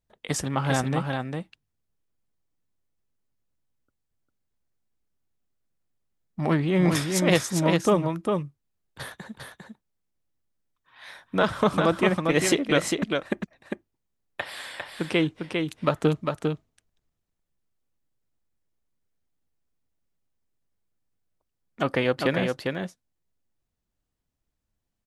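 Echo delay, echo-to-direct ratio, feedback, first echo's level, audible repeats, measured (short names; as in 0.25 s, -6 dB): 0.401 s, -4.5 dB, no steady repeat, -4.5 dB, 1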